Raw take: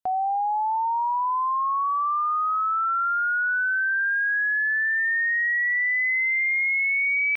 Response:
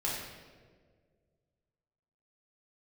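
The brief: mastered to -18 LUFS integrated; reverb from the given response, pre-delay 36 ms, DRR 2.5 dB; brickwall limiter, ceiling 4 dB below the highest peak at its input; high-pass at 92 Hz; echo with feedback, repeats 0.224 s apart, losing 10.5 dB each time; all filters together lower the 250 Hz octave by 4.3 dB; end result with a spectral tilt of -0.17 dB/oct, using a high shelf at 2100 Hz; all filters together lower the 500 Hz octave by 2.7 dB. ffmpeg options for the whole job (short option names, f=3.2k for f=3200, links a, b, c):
-filter_complex "[0:a]highpass=92,equalizer=f=250:t=o:g=-3.5,equalizer=f=500:t=o:g=-7,highshelf=f=2.1k:g=8,alimiter=limit=-19.5dB:level=0:latency=1,aecho=1:1:224|448|672:0.299|0.0896|0.0269,asplit=2[a][b];[1:a]atrim=start_sample=2205,adelay=36[c];[b][c]afir=irnorm=-1:irlink=0,volume=-8.5dB[d];[a][d]amix=inputs=2:normalize=0,volume=1.5dB"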